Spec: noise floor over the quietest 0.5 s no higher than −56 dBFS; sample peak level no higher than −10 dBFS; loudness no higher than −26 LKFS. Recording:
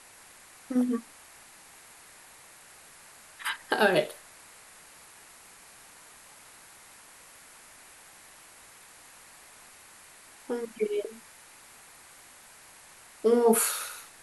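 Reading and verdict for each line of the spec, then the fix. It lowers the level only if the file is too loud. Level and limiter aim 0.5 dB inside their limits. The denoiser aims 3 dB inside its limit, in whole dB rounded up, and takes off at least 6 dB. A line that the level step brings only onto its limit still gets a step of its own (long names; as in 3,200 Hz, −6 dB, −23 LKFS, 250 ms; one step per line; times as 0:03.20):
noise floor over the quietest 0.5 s −53 dBFS: out of spec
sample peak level −8.5 dBFS: out of spec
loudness −28.0 LKFS: in spec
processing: broadband denoise 6 dB, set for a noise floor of −53 dBFS
brickwall limiter −10.5 dBFS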